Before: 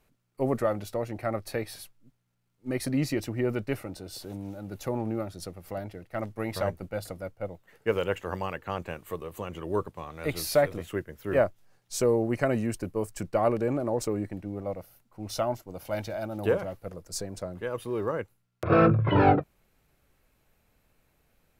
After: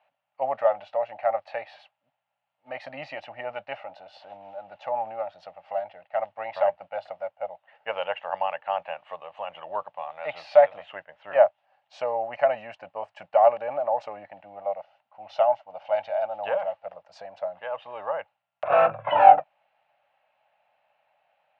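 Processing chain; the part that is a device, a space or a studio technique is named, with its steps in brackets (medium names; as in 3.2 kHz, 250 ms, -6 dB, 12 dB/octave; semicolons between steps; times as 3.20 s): kitchen radio (cabinet simulation 210–3500 Hz, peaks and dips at 230 Hz -6 dB, 360 Hz -7 dB, 580 Hz +9 dB, 830 Hz +9 dB, 1.8 kHz +3 dB, 2.8 kHz +8 dB); resonant low shelf 520 Hz -9.5 dB, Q 3; trim -3 dB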